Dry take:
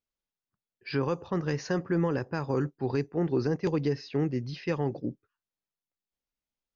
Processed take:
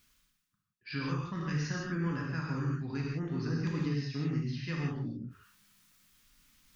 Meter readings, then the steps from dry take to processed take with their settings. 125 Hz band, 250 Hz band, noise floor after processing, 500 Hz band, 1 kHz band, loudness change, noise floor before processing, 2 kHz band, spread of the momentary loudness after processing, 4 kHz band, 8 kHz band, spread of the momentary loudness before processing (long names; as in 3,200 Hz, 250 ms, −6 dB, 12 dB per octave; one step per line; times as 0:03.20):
−1.0 dB, −4.5 dB, −81 dBFS, −13.5 dB, −6.0 dB, −4.5 dB, below −85 dBFS, −1.0 dB, 6 LU, −1.0 dB, can't be measured, 5 LU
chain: flat-topped bell 550 Hz −13 dB
reverb whose tail is shaped and stops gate 200 ms flat, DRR −3.5 dB
reversed playback
upward compression, threshold −35 dBFS
reversed playback
level −6 dB